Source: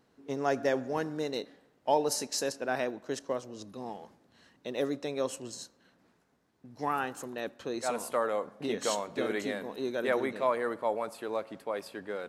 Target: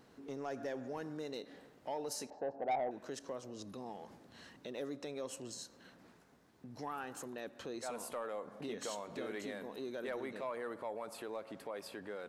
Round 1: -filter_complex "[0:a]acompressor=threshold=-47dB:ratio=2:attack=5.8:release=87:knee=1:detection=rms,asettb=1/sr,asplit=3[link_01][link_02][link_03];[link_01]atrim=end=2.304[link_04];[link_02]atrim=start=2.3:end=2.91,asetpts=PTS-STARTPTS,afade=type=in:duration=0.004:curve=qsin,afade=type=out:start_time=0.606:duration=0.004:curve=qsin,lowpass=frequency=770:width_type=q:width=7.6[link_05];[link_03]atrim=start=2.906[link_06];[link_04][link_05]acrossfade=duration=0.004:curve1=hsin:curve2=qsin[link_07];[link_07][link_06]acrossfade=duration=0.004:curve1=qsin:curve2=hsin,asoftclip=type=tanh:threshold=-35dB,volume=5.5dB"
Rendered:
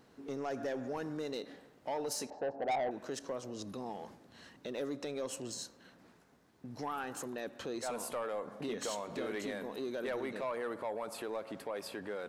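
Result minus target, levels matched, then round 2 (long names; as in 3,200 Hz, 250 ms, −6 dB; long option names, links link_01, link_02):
downward compressor: peak gain reduction −5 dB
-filter_complex "[0:a]acompressor=threshold=-56.5dB:ratio=2:attack=5.8:release=87:knee=1:detection=rms,asettb=1/sr,asplit=3[link_01][link_02][link_03];[link_01]atrim=end=2.304[link_04];[link_02]atrim=start=2.3:end=2.91,asetpts=PTS-STARTPTS,afade=type=in:duration=0.004:curve=qsin,afade=type=out:start_time=0.606:duration=0.004:curve=qsin,lowpass=frequency=770:width_type=q:width=7.6[link_05];[link_03]atrim=start=2.906[link_06];[link_04][link_05]acrossfade=duration=0.004:curve1=hsin:curve2=qsin[link_07];[link_07][link_06]acrossfade=duration=0.004:curve1=qsin:curve2=hsin,asoftclip=type=tanh:threshold=-35dB,volume=5.5dB"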